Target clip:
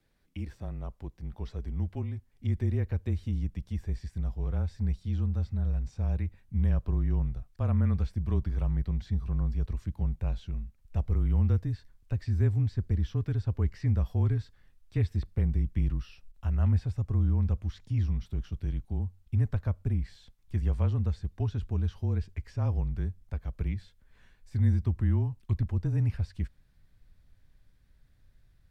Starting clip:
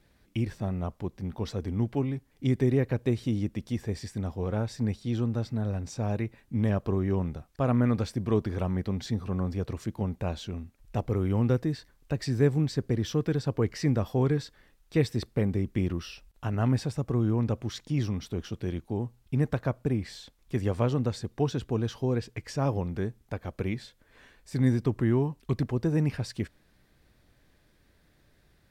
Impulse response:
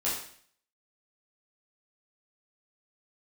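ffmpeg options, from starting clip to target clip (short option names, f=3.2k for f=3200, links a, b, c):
-filter_complex "[0:a]asubboost=boost=6.5:cutoff=140,afreqshift=-28,acrossover=split=3600[a][b];[b]acompressor=threshold=-52dB:ratio=4:attack=1:release=60[c];[a][c]amix=inputs=2:normalize=0,volume=-8.5dB"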